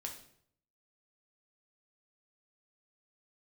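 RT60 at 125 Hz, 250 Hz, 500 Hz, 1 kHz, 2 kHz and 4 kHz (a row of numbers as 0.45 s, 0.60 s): 0.85 s, 0.70 s, 0.70 s, 0.60 s, 0.55 s, 0.55 s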